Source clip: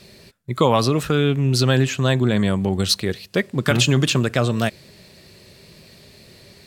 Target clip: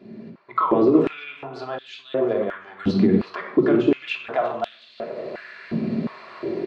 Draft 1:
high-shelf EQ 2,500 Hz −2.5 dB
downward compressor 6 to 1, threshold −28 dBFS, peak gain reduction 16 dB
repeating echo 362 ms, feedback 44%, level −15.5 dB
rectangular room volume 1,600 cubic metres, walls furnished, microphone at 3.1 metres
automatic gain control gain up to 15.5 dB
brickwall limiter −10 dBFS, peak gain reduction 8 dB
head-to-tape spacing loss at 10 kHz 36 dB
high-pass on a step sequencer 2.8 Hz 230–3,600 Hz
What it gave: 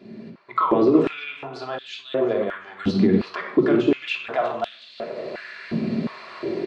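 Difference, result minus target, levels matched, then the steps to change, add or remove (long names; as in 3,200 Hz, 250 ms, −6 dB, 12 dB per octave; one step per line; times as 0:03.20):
4,000 Hz band +3.5 dB
change: high-shelf EQ 2,500 Hz −10 dB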